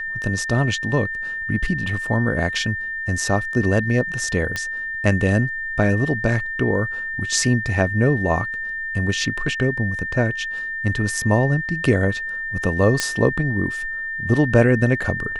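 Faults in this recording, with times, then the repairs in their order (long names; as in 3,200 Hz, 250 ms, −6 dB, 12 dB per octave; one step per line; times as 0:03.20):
whistle 1,800 Hz −25 dBFS
0:04.56: click −10 dBFS
0:13.00: click −4 dBFS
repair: click removal
notch filter 1,800 Hz, Q 30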